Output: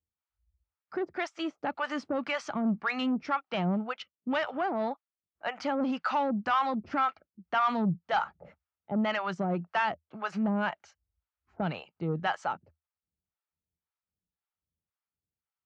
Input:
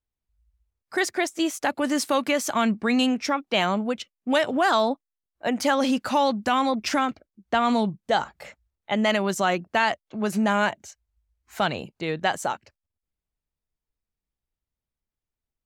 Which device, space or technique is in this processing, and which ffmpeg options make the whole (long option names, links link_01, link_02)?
guitar amplifier with harmonic tremolo: -filter_complex "[0:a]acrossover=split=620[link_01][link_02];[link_01]aeval=exprs='val(0)*(1-1/2+1/2*cos(2*PI*1.9*n/s))':channel_layout=same[link_03];[link_02]aeval=exprs='val(0)*(1-1/2-1/2*cos(2*PI*1.9*n/s))':channel_layout=same[link_04];[link_03][link_04]amix=inputs=2:normalize=0,asoftclip=type=tanh:threshold=-21.5dB,highpass=75,equalizer=frequency=80:width_type=q:width=4:gain=9,equalizer=frequency=170:width_type=q:width=4:gain=8,equalizer=frequency=840:width_type=q:width=4:gain=4,equalizer=frequency=1300:width_type=q:width=4:gain=8,equalizer=frequency=3800:width_type=q:width=4:gain=-6,lowpass=frequency=4500:width=0.5412,lowpass=frequency=4500:width=1.3066,volume=-2dB"